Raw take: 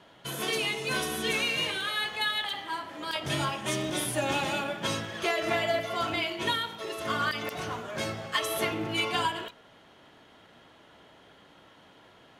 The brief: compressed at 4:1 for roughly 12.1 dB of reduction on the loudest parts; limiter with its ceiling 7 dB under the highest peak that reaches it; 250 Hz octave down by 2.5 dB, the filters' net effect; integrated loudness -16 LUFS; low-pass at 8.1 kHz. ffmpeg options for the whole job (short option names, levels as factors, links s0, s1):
-af "lowpass=8100,equalizer=f=250:t=o:g=-3.5,acompressor=threshold=0.0112:ratio=4,volume=17.8,alimiter=limit=0.473:level=0:latency=1"